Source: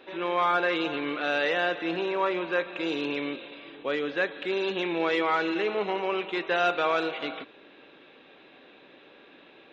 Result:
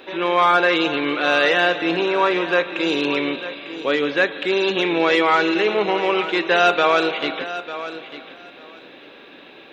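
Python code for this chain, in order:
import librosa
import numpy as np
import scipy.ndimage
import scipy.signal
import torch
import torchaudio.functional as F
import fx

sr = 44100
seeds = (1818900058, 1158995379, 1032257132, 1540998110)

p1 = fx.high_shelf(x, sr, hz=5300.0, db=8.0)
p2 = p1 + fx.echo_feedback(p1, sr, ms=898, feedback_pct=16, wet_db=-13, dry=0)
y = F.gain(torch.from_numpy(p2), 8.5).numpy()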